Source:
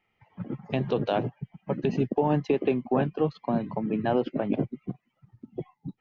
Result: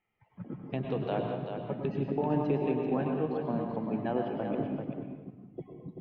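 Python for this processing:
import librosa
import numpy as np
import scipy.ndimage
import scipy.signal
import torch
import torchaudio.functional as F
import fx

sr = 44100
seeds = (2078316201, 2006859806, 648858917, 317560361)

p1 = fx.air_absorb(x, sr, metres=220.0)
p2 = p1 + fx.echo_single(p1, sr, ms=387, db=-7.0, dry=0)
p3 = fx.rev_plate(p2, sr, seeds[0], rt60_s=1.0, hf_ratio=0.9, predelay_ms=90, drr_db=3.0)
y = F.gain(torch.from_numpy(p3), -6.5).numpy()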